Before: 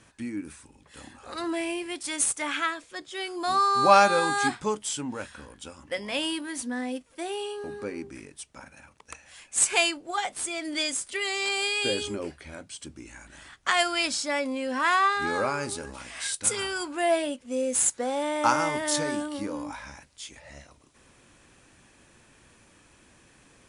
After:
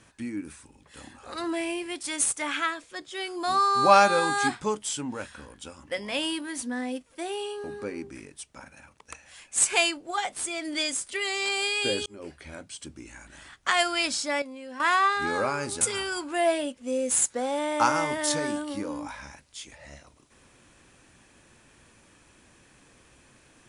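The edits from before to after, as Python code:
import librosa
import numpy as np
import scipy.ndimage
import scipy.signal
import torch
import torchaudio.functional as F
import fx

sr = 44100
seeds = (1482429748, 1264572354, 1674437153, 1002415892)

y = fx.edit(x, sr, fx.fade_in_span(start_s=12.06, length_s=0.37),
    fx.clip_gain(start_s=14.42, length_s=0.38, db=-10.5),
    fx.cut(start_s=15.81, length_s=0.64), tone=tone)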